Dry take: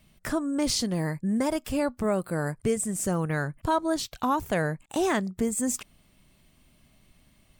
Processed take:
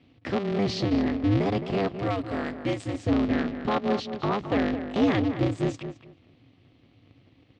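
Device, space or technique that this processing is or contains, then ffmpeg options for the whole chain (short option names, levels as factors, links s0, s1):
ring modulator pedal into a guitar cabinet: -filter_complex "[0:a]asettb=1/sr,asplit=3[s0][s1][s2];[s0]atrim=end=1.874[s3];[s1]atrim=start=1.87:end=2.94,asetpts=PTS-STARTPTS,afade=t=in:d=0.004:c=qsin,afade=t=out:st=1.066:d=0.004:c=qsin,tiltshelf=f=880:g=-6[s4];[s2]atrim=start=2.936[s5];[s3][s4]acrossfade=d=0.004:c1=hsin:c2=qsin[s6];[s6][s5]acrossfade=d=0.004:c1=qsin:c2=hsin,aeval=exprs='val(0)*sgn(sin(2*PI*100*n/s))':c=same,highpass=80,equalizer=f=110:t=q:w=4:g=7,equalizer=f=270:t=q:w=4:g=9,equalizer=f=950:t=q:w=4:g=-6,equalizer=f=1500:t=q:w=4:g=-6,lowpass=f=4200:w=0.5412,lowpass=f=4200:w=1.3066,asplit=2[s7][s8];[s8]adelay=216,lowpass=f=2100:p=1,volume=0.355,asplit=2[s9][s10];[s10]adelay=216,lowpass=f=2100:p=1,volume=0.19,asplit=2[s11][s12];[s12]adelay=216,lowpass=f=2100:p=1,volume=0.19[s13];[s7][s9][s11][s13]amix=inputs=4:normalize=0"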